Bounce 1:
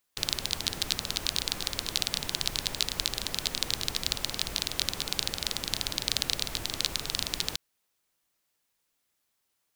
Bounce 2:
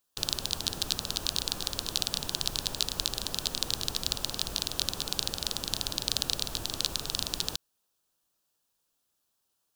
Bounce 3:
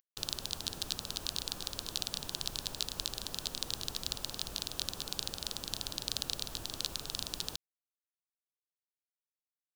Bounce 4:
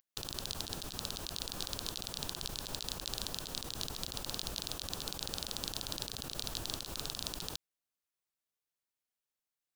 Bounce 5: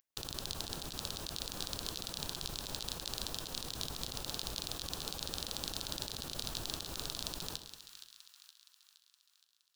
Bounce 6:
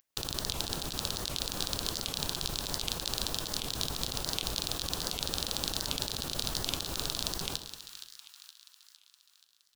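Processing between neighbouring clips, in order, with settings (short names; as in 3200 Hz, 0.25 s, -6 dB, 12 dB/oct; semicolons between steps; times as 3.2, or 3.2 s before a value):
bell 2100 Hz -13 dB 0.41 oct
upward compressor, threshold -49 dBFS; bit-crush 8-bit; gain -6.5 dB
negative-ratio compressor -41 dBFS, ratio -1; gain +1 dB
split-band echo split 1300 Hz, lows 0.104 s, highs 0.468 s, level -11 dB; on a send at -14 dB: reverb, pre-delay 3 ms; on the sum: gain -1 dB
record warp 78 rpm, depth 250 cents; gain +6.5 dB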